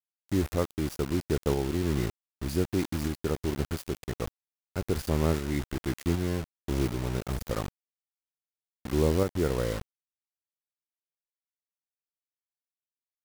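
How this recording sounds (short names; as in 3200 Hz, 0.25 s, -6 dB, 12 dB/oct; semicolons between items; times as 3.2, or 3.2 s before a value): a quantiser's noise floor 6-bit, dither none; tremolo saw up 1.3 Hz, depth 40%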